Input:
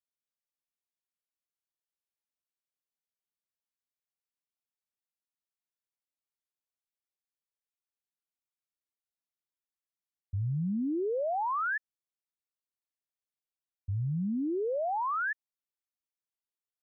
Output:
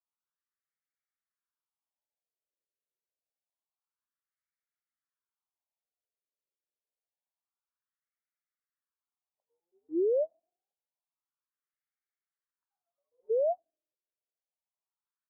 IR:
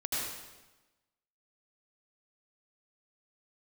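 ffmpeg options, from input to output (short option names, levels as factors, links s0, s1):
-af "atempo=1.1,afftfilt=real='re*between(b*sr/1024,450*pow(1700/450,0.5+0.5*sin(2*PI*0.27*pts/sr))/1.41,450*pow(1700/450,0.5+0.5*sin(2*PI*0.27*pts/sr))*1.41)':imag='im*between(b*sr/1024,450*pow(1700/450,0.5+0.5*sin(2*PI*0.27*pts/sr))/1.41,450*pow(1700/450,0.5+0.5*sin(2*PI*0.27*pts/sr))*1.41)':win_size=1024:overlap=0.75,volume=1.68"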